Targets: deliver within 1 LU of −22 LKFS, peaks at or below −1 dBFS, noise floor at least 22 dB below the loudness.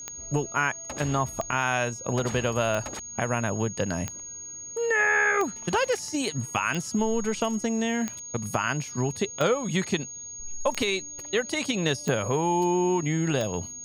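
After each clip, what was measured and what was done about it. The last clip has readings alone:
number of clicks 11; interfering tone 6,600 Hz; level of the tone −37 dBFS; integrated loudness −27.0 LKFS; sample peak −11.0 dBFS; target loudness −22.0 LKFS
→ click removal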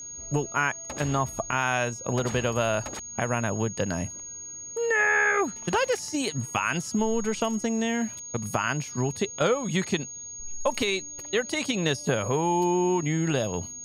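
number of clicks 0; interfering tone 6,600 Hz; level of the tone −37 dBFS
→ notch filter 6,600 Hz, Q 30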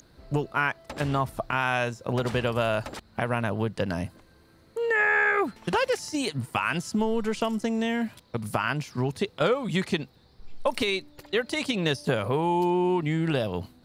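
interfering tone none found; integrated loudness −27.0 LKFS; sample peak −11.5 dBFS; target loudness −22.0 LKFS
→ level +5 dB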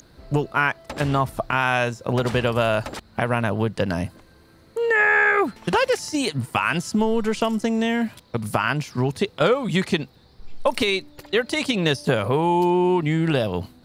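integrated loudness −22.0 LKFS; sample peak −6.5 dBFS; background noise floor −53 dBFS

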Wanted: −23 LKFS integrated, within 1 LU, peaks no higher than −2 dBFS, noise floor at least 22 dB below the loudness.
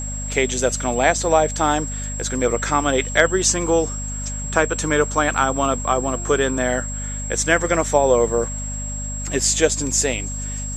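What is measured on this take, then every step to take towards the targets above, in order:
mains hum 50 Hz; hum harmonics up to 250 Hz; level of the hum −27 dBFS; interfering tone 7,600 Hz; level of the tone −29 dBFS; integrated loudness −20.0 LKFS; sample peak −1.5 dBFS; target loudness −23.0 LKFS
→ mains-hum notches 50/100/150/200/250 Hz
notch filter 7,600 Hz, Q 30
level −3 dB

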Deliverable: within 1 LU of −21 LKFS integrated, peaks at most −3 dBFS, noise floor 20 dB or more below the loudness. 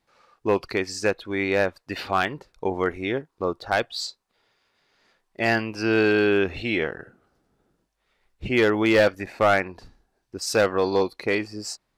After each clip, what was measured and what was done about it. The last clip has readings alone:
share of clipped samples 0.3%; peaks flattened at −11.0 dBFS; integrated loudness −24.0 LKFS; sample peak −11.0 dBFS; target loudness −21.0 LKFS
→ clipped peaks rebuilt −11 dBFS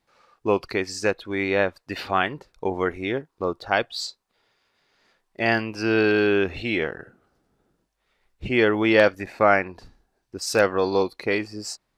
share of clipped samples 0.0%; integrated loudness −23.5 LKFS; sample peak −2.0 dBFS; target loudness −21.0 LKFS
→ level +2.5 dB
brickwall limiter −3 dBFS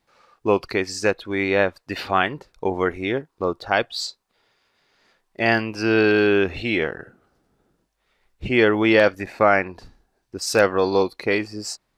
integrated loudness −21.5 LKFS; sample peak −3.0 dBFS; background noise floor −73 dBFS

